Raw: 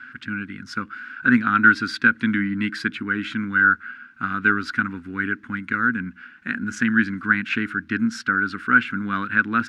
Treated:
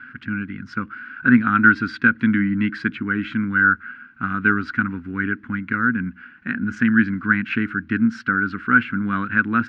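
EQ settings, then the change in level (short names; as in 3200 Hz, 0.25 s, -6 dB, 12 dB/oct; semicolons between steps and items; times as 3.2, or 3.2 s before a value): air absorption 73 m; tone controls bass +5 dB, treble -10 dB; notch 3600 Hz, Q 18; +1.0 dB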